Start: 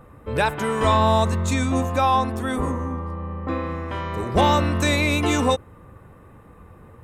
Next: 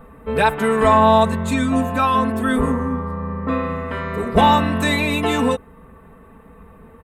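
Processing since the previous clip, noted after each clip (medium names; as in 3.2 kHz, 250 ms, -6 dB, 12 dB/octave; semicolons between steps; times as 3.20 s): comb 4.5 ms, depth 93%; gain riding within 3 dB 2 s; peaking EQ 5.9 kHz -11.5 dB 0.64 oct; trim +1 dB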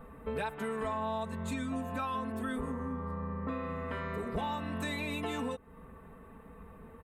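compression 5:1, threshold -27 dBFS, peak gain reduction 16 dB; trim -7 dB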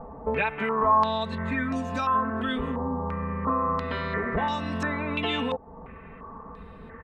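step-sequenced low-pass 2.9 Hz 810–5500 Hz; trim +6.5 dB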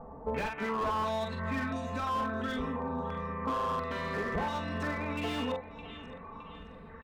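doubling 44 ms -6 dB; feedback delay 615 ms, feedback 45%, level -15.5 dB; slew-rate limiter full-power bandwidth 65 Hz; trim -6 dB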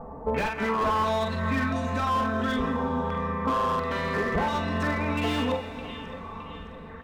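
reverberation RT60 3.6 s, pre-delay 118 ms, DRR 11.5 dB; trim +6.5 dB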